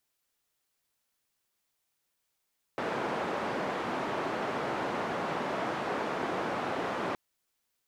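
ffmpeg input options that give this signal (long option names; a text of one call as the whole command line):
ffmpeg -f lavfi -i "anoisesrc=color=white:duration=4.37:sample_rate=44100:seed=1,highpass=frequency=190,lowpass=frequency=1000,volume=-14.3dB" out.wav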